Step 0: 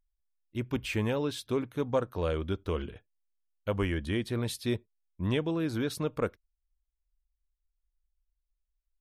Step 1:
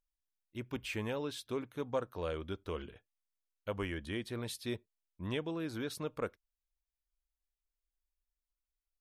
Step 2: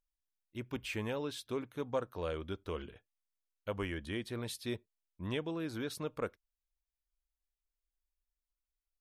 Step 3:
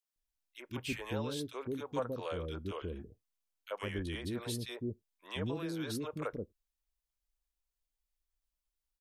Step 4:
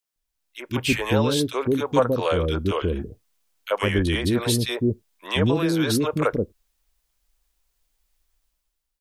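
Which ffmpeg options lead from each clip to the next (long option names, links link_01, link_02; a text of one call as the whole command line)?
ffmpeg -i in.wav -af "lowshelf=frequency=300:gain=-6,volume=-5dB" out.wav
ffmpeg -i in.wav -af anull out.wav
ffmpeg -i in.wav -filter_complex "[0:a]acrossover=split=450|1800[link_01][link_02][link_03];[link_02]adelay=30[link_04];[link_01]adelay=160[link_05];[link_05][link_04][link_03]amix=inputs=3:normalize=0,volume=2dB" out.wav
ffmpeg -i in.wav -af "dynaudnorm=framelen=170:gausssize=7:maxgain=10.5dB,volume=6dB" out.wav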